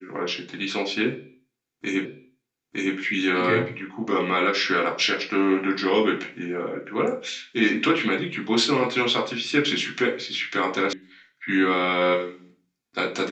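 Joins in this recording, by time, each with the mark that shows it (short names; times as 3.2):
2.05 repeat of the last 0.91 s
10.93 sound cut off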